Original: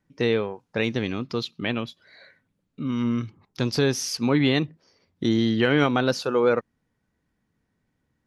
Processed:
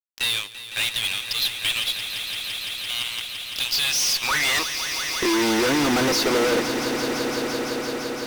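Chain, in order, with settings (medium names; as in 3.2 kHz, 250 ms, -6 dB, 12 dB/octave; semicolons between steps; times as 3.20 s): high-pass sweep 3.2 kHz -> 310 Hz, 3.79–5.47 s; fuzz box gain 39 dB, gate -44 dBFS; echo with a slow build-up 170 ms, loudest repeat 5, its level -11.5 dB; trim -7 dB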